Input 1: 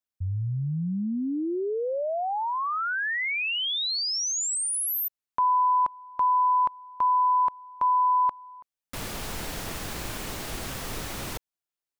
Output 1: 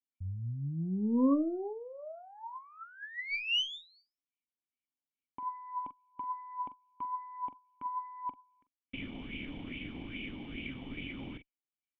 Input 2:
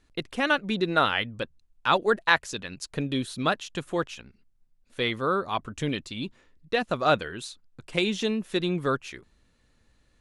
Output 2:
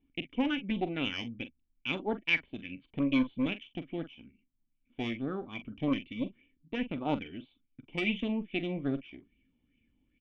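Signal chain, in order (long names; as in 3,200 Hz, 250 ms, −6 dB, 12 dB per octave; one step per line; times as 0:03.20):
formant resonators in series i
harmonic generator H 4 −17 dB, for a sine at −22.5 dBFS
double-tracking delay 43 ms −12.5 dB
auto-filter bell 2.4 Hz 810–2,600 Hz +16 dB
level +2.5 dB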